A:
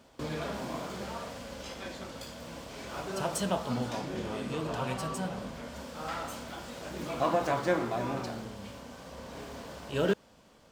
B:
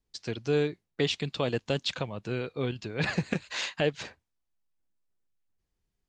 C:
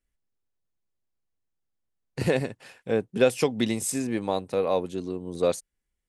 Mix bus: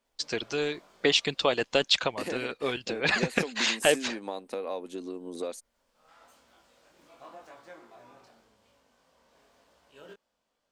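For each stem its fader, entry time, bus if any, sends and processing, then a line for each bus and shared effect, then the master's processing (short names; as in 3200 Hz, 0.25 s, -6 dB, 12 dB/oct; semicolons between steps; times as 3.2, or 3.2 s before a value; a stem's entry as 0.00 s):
-15.0 dB, 0.00 s, bus A, no send, chorus 0.92 Hz, delay 17.5 ms, depth 6.7 ms; auto duck -17 dB, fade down 1.05 s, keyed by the third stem
-0.5 dB, 0.05 s, no bus, no send, harmonic-percussive split percussive +9 dB
0.0 dB, 0.00 s, bus A, no send, resonant low shelf 170 Hz -10 dB, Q 3
bus A: 0.0 dB, compressor 12:1, threshold -27 dBFS, peak gain reduction 15 dB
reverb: off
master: bell 120 Hz -12 dB 2.7 oct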